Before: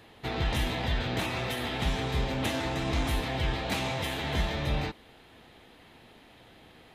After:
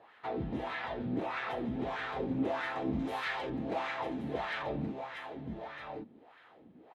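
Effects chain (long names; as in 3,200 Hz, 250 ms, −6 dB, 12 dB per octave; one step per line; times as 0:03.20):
0:02.99–0:03.50: spectral tilt +3.5 dB per octave
single-tap delay 1,125 ms −6 dB
LFO wah 1.6 Hz 210–1,600 Hz, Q 2.7
level +4.5 dB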